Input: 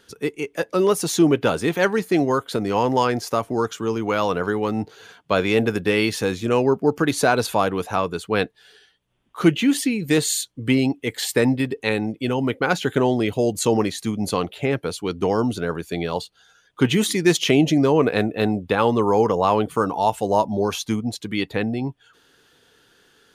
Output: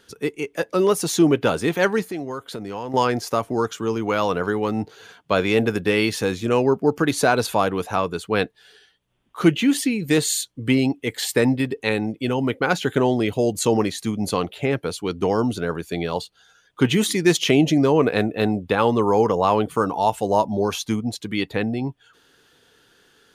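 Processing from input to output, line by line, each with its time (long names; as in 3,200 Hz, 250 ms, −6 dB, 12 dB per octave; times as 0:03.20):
0:02.02–0:02.94: downward compressor 2 to 1, threshold −34 dBFS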